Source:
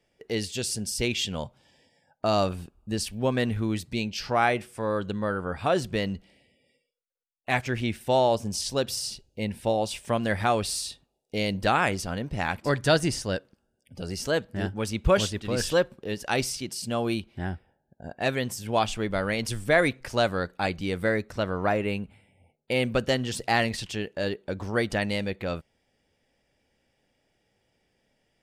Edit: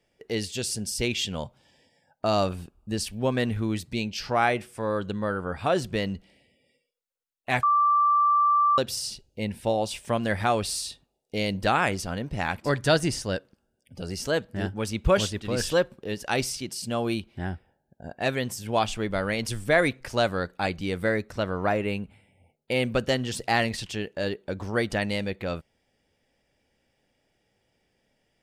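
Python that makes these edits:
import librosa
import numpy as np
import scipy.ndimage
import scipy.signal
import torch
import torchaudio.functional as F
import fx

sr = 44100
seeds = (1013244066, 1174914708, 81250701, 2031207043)

y = fx.edit(x, sr, fx.bleep(start_s=7.63, length_s=1.15, hz=1170.0, db=-17.5), tone=tone)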